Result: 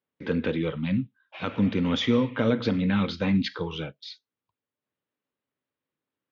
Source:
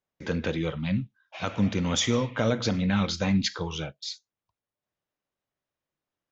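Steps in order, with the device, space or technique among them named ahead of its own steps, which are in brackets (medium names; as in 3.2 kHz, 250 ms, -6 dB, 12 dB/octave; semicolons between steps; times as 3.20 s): guitar cabinet (cabinet simulation 94–3900 Hz, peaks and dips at 260 Hz +7 dB, 450 Hz +4 dB, 690 Hz -6 dB)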